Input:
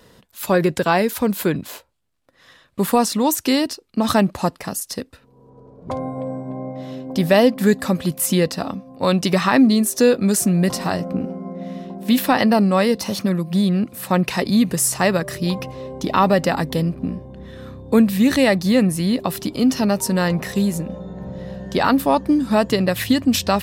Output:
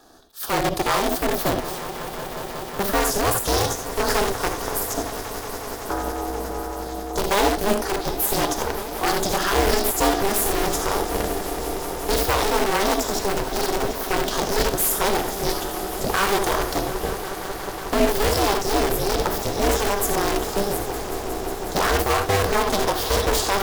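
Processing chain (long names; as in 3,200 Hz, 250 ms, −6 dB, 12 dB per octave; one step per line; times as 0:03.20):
Butterworth band-reject 1,900 Hz, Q 2
tube saturation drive 9 dB, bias 0.45
convolution reverb, pre-delay 3 ms, DRR 5.5 dB
in parallel at −4 dB: wrap-around overflow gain 15.5 dB
on the sum: high-pass filter 200 Hz
on a send: echo that builds up and dies away 182 ms, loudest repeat 5, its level −16 dB
on the sum: formants moved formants +4 semitones
ring modulation 200 Hz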